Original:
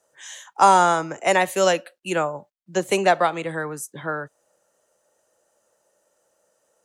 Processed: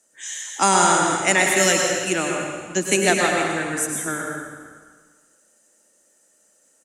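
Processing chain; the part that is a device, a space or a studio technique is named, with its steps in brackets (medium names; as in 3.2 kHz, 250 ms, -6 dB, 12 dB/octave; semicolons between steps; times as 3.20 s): graphic EQ 125/250/500/1000/2000/8000 Hz -8/+12/-7/-7/+5/+11 dB; stairwell (reverberation RT60 1.5 s, pre-delay 96 ms, DRR 0 dB); frequency-shifting echo 172 ms, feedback 46%, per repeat -35 Hz, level -19 dB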